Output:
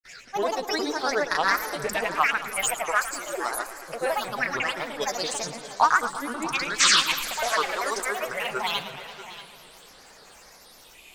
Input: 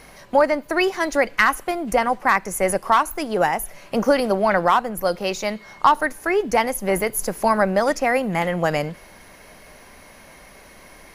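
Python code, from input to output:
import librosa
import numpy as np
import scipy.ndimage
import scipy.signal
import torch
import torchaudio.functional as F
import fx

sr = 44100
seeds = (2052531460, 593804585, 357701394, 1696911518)

p1 = scipy.signal.sosfilt(scipy.signal.butter(2, 9800.0, 'lowpass', fs=sr, output='sos'), x)
p2 = fx.tilt_shelf(p1, sr, db=-10.0, hz=700.0)
p3 = fx.spec_paint(p2, sr, seeds[0], shape='noise', start_s=6.76, length_s=0.27, low_hz=1100.0, high_hz=5900.0, level_db=-11.0)
p4 = fx.phaser_stages(p3, sr, stages=6, low_hz=190.0, high_hz=3100.0, hz=0.22, feedback_pct=35)
p5 = fx.granulator(p4, sr, seeds[1], grain_ms=100.0, per_s=31.0, spray_ms=100.0, spread_st=7)
p6 = p5 + fx.echo_single(p5, sr, ms=635, db=-15.0, dry=0)
p7 = fx.echo_warbled(p6, sr, ms=112, feedback_pct=76, rate_hz=2.8, cents=179, wet_db=-14)
y = p7 * 10.0 ** (-2.0 / 20.0)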